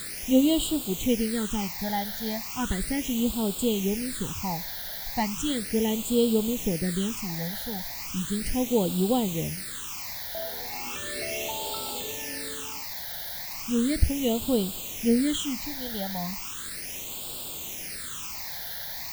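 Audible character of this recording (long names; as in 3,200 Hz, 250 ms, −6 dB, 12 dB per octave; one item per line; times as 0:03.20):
a quantiser's noise floor 6 bits, dither triangular
phaser sweep stages 8, 0.36 Hz, lowest notch 340–1,900 Hz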